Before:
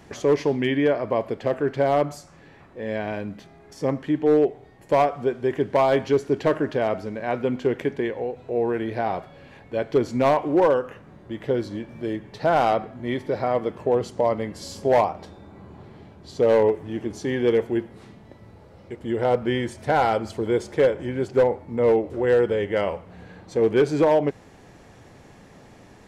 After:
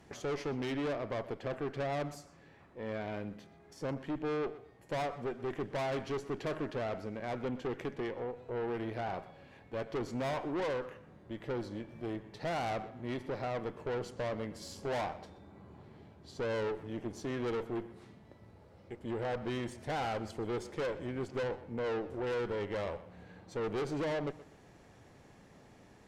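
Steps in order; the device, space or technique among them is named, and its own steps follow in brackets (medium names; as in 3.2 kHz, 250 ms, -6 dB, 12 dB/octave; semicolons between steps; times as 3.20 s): rockabilly slapback (valve stage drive 25 dB, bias 0.6; tape echo 124 ms, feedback 32%, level -15.5 dB, low-pass 4.3 kHz); trim -7 dB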